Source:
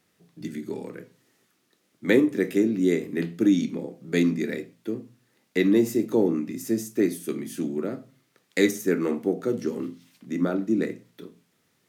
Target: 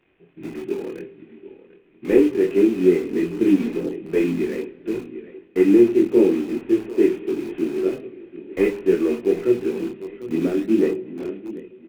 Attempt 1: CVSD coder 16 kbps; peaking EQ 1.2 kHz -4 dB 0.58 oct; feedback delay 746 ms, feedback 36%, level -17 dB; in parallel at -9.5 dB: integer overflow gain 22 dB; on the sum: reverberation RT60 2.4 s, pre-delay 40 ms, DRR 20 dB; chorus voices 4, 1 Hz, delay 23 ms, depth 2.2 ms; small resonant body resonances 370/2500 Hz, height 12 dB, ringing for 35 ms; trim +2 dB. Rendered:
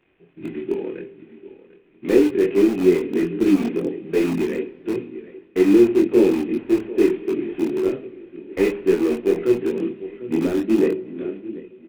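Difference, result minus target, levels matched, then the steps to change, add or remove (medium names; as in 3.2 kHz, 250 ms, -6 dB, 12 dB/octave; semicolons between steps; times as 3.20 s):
integer overflow: distortion -16 dB
change: integer overflow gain 32 dB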